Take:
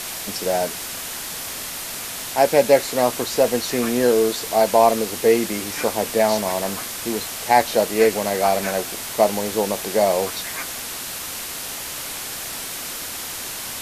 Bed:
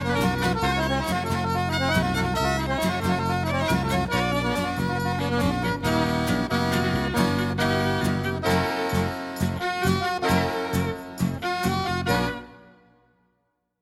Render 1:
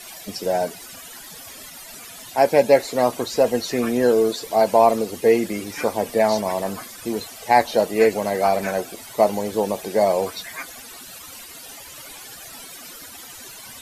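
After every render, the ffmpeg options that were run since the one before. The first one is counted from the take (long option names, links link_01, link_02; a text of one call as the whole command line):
ffmpeg -i in.wav -af "afftdn=noise_reduction=15:noise_floor=-31" out.wav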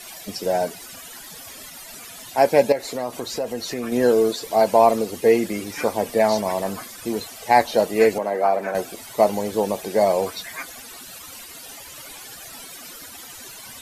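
ffmpeg -i in.wav -filter_complex "[0:a]asettb=1/sr,asplit=3[link_01][link_02][link_03];[link_01]atrim=end=2.724[link_04];[link_02]atrim=start=2.72:end=3.92,asetpts=PTS-STARTPTS,afade=type=in:duration=0.004:curve=qsin,afade=type=out:start_time=1.196:duration=0.004:curve=qsin,acompressor=threshold=-26dB:ratio=2.5:attack=3.2:release=140:knee=1:detection=peak[link_05];[link_03]atrim=start=3.916[link_06];[link_04][link_05]acrossfade=duration=0.004:curve1=hsin:curve2=qsin[link_07];[link_07][link_06]acrossfade=duration=0.004:curve1=qsin:curve2=hsin,asettb=1/sr,asplit=3[link_08][link_09][link_10];[link_08]atrim=end=8.184[link_11];[link_09]atrim=start=8.18:end=8.75,asetpts=PTS-STARTPTS,afade=type=in:duration=0.004:curve=qsin,afade=type=out:start_time=0.566:duration=0.004:curve=qsin,acrossover=split=230 2000:gain=0.112 1 0.224[link_12][link_13][link_14];[link_12][link_13][link_14]amix=inputs=3:normalize=0[link_15];[link_10]atrim=start=8.746[link_16];[link_11][link_15]acrossfade=duration=0.004:curve1=hsin:curve2=qsin[link_17];[link_17][link_16]acrossfade=duration=0.004:curve1=qsin:curve2=hsin" out.wav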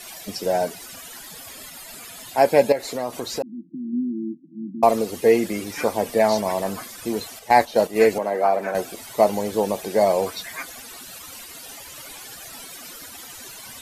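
ffmpeg -i in.wav -filter_complex "[0:a]asettb=1/sr,asplit=3[link_01][link_02][link_03];[link_01]atrim=end=1.274[link_04];[link_02]atrim=start=1.27:end=2.83,asetpts=PTS-STARTPTS,afade=type=in:duration=0.004:curve=qsin,afade=type=out:start_time=1.556:duration=0.004:curve=qsin,bandreject=frequency=5800:width=12[link_05];[link_03]atrim=start=2.826[link_06];[link_04][link_05]acrossfade=duration=0.004:curve1=hsin:curve2=qsin[link_07];[link_07][link_06]acrossfade=duration=0.004:curve1=qsin:curve2=hsin,asettb=1/sr,asplit=3[link_08][link_09][link_10];[link_08]atrim=end=3.424[link_11];[link_09]atrim=start=3.42:end=4.83,asetpts=PTS-STARTPTS,afade=type=in:duration=0.004:curve=qsin,afade=type=out:start_time=1.406:duration=0.004:curve=qsin,asuperpass=centerf=220:order=20:qfactor=1.2[link_12];[link_10]atrim=start=4.826[link_13];[link_11][link_12]acrossfade=duration=0.004:curve1=hsin:curve2=qsin[link_14];[link_14][link_13]acrossfade=duration=0.004:curve1=qsin:curve2=hsin,asettb=1/sr,asplit=3[link_15][link_16][link_17];[link_15]atrim=end=7.394[link_18];[link_16]atrim=start=7.39:end=8.02,asetpts=PTS-STARTPTS,afade=type=in:duration=0.004:curve=qsin,afade=type=out:start_time=0.626:duration=0.004:curve=qsin,agate=range=-7dB:threshold=-27dB:ratio=16:release=100:detection=peak[link_19];[link_17]atrim=start=8.016[link_20];[link_18][link_19]acrossfade=duration=0.004:curve1=hsin:curve2=qsin[link_21];[link_21][link_20]acrossfade=duration=0.004:curve1=qsin:curve2=hsin" out.wav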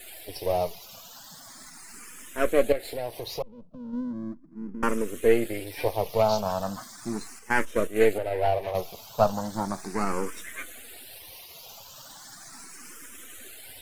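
ffmpeg -i in.wav -filter_complex "[0:a]aeval=exprs='if(lt(val(0),0),0.251*val(0),val(0))':channel_layout=same,asplit=2[link_01][link_02];[link_02]afreqshift=0.37[link_03];[link_01][link_03]amix=inputs=2:normalize=1" out.wav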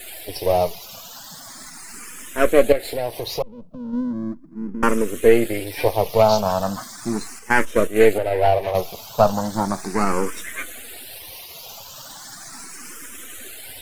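ffmpeg -i in.wav -af "volume=7.5dB,alimiter=limit=-2dB:level=0:latency=1" out.wav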